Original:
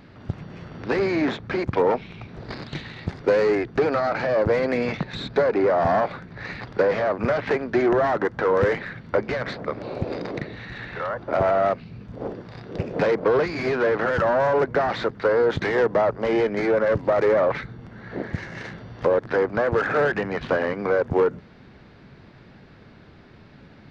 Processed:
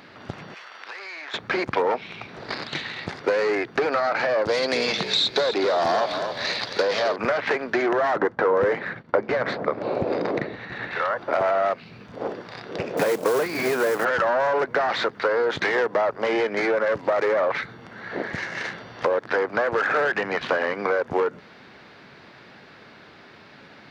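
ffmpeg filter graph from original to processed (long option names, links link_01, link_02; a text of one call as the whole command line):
ffmpeg -i in.wav -filter_complex "[0:a]asettb=1/sr,asplit=3[link_01][link_02][link_03];[link_01]atrim=end=0.544[link_04];[link_02]atrim=start=0.54:end=1.34,asetpts=PTS-STARTPTS,afade=type=in:duration=0.004:curve=qsin,afade=type=out:start_time=0.796:duration=0.004:curve=qsin,highpass=1000,acompressor=threshold=-41dB:ratio=6:attack=3.2:release=140:knee=1:detection=peak[link_05];[link_03]atrim=start=1.336[link_06];[link_04][link_05]acrossfade=duration=0.004:curve1=hsin:curve2=qsin[link_07];[link_07][link_06]acrossfade=duration=0.004:curve1=qsin:curve2=hsin,asettb=1/sr,asplit=3[link_08][link_09][link_10];[link_08]atrim=end=4.454[link_11];[link_09]atrim=start=4.45:end=7.16,asetpts=PTS-STARTPTS,afade=type=in:duration=0.004:curve=qsin,afade=type=out:start_time=2.706:duration=0.004:curve=qsin,highshelf=frequency=2800:width_type=q:width=1.5:gain=9.5,asplit=5[link_12][link_13][link_14][link_15][link_16];[link_13]adelay=262,afreqshift=-49,volume=-11dB[link_17];[link_14]adelay=524,afreqshift=-98,volume=-19dB[link_18];[link_15]adelay=786,afreqshift=-147,volume=-26.9dB[link_19];[link_16]adelay=1048,afreqshift=-196,volume=-34.9dB[link_20];[link_12][link_17][link_18][link_19][link_20]amix=inputs=5:normalize=0,atrim=end_sample=119511[link_21];[link_10]atrim=start=7.156[link_22];[link_11][link_21]acrossfade=duration=0.004:curve1=hsin:curve2=qsin[link_23];[link_23][link_22]acrossfade=duration=0.004:curve1=qsin:curve2=hsin,asettb=1/sr,asplit=3[link_24][link_25][link_26];[link_24]atrim=end=8.164[link_27];[link_25]atrim=start=8.16:end=10.91,asetpts=PTS-STARTPTS,afade=type=in:duration=0.004:curve=qsin,afade=type=out:start_time=2.746:duration=0.004:curve=qsin,agate=range=-33dB:threshold=-34dB:ratio=3:release=100:detection=peak,tiltshelf=frequency=1500:gain=7[link_28];[link_26]atrim=start=10.906[link_29];[link_27][link_28]acrossfade=duration=0.004:curve1=hsin:curve2=qsin[link_30];[link_30][link_29]acrossfade=duration=0.004:curve1=qsin:curve2=hsin,asettb=1/sr,asplit=3[link_31][link_32][link_33];[link_31]atrim=end=12.974[link_34];[link_32]atrim=start=12.97:end=14.05,asetpts=PTS-STARTPTS,afade=type=in:duration=0.004:curve=qsin,afade=type=out:start_time=1.076:duration=0.004:curve=qsin,highpass=85,tiltshelf=frequency=710:gain=4,acrusher=bits=5:mode=log:mix=0:aa=0.000001[link_35];[link_33]atrim=start=14.046[link_36];[link_34][link_35]acrossfade=duration=0.004:curve1=hsin:curve2=qsin[link_37];[link_37][link_36]acrossfade=duration=0.004:curve1=qsin:curve2=hsin,highpass=frequency=770:poles=1,acompressor=threshold=-29dB:ratio=2.5,volume=8dB" out.wav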